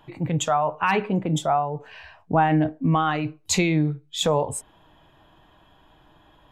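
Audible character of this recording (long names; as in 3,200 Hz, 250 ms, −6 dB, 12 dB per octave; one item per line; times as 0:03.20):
background noise floor −57 dBFS
spectral slope −5.0 dB per octave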